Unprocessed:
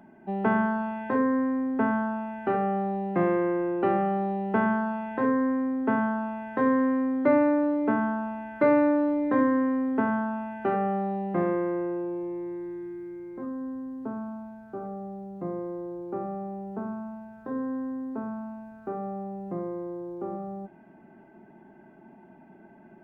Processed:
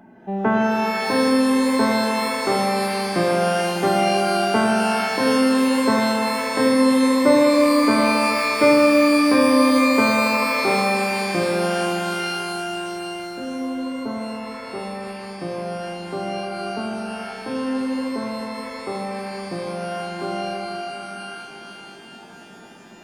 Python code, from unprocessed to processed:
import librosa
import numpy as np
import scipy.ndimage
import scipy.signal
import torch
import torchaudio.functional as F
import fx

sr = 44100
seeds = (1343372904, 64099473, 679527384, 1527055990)

y = fx.rev_shimmer(x, sr, seeds[0], rt60_s=3.2, semitones=12, shimmer_db=-2, drr_db=2.5)
y = F.gain(torch.from_numpy(y), 4.0).numpy()